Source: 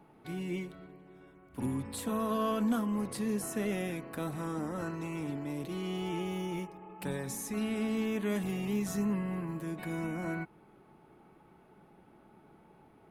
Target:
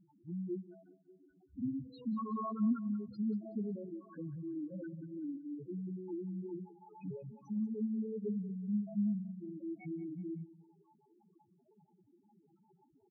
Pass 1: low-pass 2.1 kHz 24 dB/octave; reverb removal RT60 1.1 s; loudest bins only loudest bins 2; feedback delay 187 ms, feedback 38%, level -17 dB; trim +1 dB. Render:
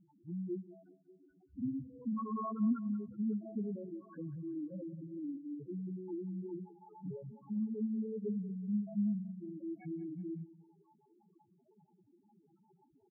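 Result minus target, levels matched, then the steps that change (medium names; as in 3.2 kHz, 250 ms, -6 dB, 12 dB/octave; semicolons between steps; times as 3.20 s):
2 kHz band -4.5 dB
change: low-pass 4.9 kHz 24 dB/octave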